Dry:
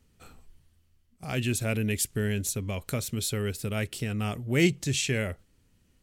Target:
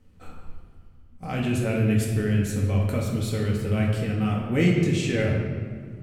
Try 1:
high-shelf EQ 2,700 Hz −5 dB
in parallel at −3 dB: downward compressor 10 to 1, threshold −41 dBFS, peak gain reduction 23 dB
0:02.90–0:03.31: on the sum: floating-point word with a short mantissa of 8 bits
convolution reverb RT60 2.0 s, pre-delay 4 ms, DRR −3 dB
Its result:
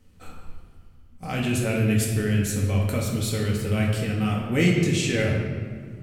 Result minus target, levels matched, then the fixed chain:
4,000 Hz band +4.0 dB
high-shelf EQ 2,700 Hz −13 dB
in parallel at −3 dB: downward compressor 10 to 1, threshold −41 dBFS, peak gain reduction 23 dB
0:02.90–0:03.31: on the sum: floating-point word with a short mantissa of 8 bits
convolution reverb RT60 2.0 s, pre-delay 4 ms, DRR −3 dB

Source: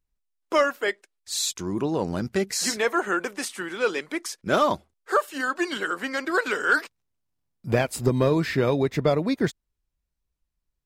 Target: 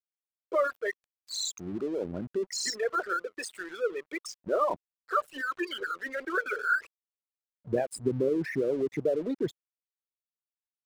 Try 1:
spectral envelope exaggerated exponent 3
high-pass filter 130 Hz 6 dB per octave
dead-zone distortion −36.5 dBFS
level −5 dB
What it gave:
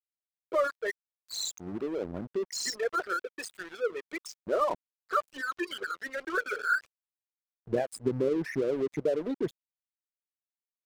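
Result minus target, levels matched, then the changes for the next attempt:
dead-zone distortion: distortion +6 dB
change: dead-zone distortion −43.5 dBFS

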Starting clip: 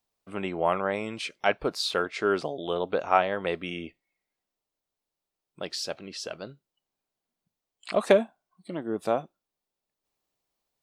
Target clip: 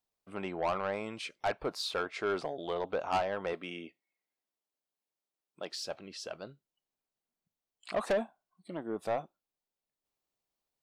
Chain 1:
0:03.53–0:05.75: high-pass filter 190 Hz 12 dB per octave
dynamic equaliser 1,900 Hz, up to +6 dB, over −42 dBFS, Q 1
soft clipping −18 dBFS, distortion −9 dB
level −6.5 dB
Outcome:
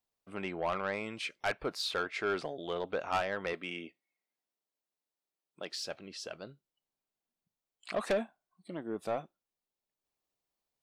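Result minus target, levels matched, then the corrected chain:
2,000 Hz band +3.5 dB
0:03.53–0:05.75: high-pass filter 190 Hz 12 dB per octave
dynamic equaliser 900 Hz, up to +6 dB, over −42 dBFS, Q 1
soft clipping −18 dBFS, distortion −7 dB
level −6.5 dB

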